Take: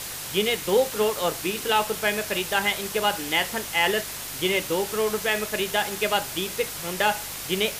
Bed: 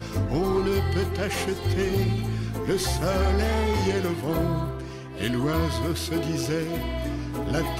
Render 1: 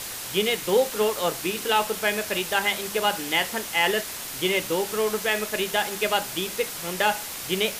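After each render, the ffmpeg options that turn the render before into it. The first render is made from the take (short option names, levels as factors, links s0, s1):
-af "bandreject=f=50:t=h:w=4,bandreject=f=100:t=h:w=4,bandreject=f=150:t=h:w=4,bandreject=f=200:t=h:w=4"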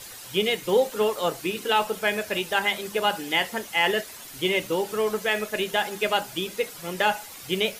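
-af "afftdn=nr=10:nf=-35"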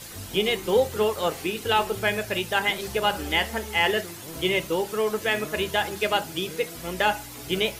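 -filter_complex "[1:a]volume=0.188[s0];[0:a][s0]amix=inputs=2:normalize=0"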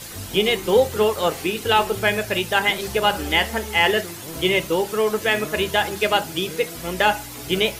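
-af "volume=1.68"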